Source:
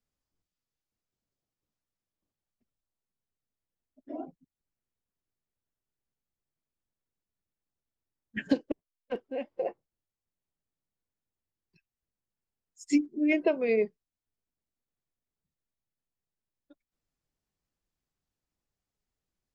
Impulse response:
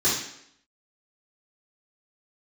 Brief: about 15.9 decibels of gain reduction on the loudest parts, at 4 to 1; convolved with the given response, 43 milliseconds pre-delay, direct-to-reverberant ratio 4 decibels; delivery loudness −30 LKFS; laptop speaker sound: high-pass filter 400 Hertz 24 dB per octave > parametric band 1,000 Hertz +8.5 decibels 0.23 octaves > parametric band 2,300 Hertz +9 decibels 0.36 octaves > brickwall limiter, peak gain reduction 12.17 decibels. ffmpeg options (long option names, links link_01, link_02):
-filter_complex "[0:a]acompressor=threshold=-39dB:ratio=4,asplit=2[link_01][link_02];[1:a]atrim=start_sample=2205,adelay=43[link_03];[link_02][link_03]afir=irnorm=-1:irlink=0,volume=-18dB[link_04];[link_01][link_04]amix=inputs=2:normalize=0,highpass=frequency=400:width=0.5412,highpass=frequency=400:width=1.3066,equalizer=frequency=1000:width_type=o:width=0.23:gain=8.5,equalizer=frequency=2300:width_type=o:width=0.36:gain=9,volume=18dB,alimiter=limit=-19.5dB:level=0:latency=1"